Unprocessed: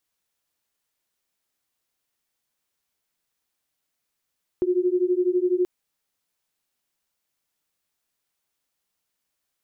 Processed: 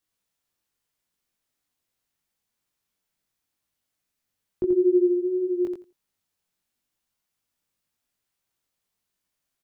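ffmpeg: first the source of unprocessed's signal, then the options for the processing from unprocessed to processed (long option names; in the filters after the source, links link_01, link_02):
-f lavfi -i "aevalsrc='0.0794*(sin(2*PI*355*t)+sin(2*PI*367*t))':duration=1.03:sample_rate=44100"
-filter_complex "[0:a]acrossover=split=270[link_01][link_02];[link_01]acontrast=32[link_03];[link_03][link_02]amix=inputs=2:normalize=0,flanger=delay=19:depth=2.1:speed=0.84,aecho=1:1:85|170|255:0.501|0.0802|0.0128"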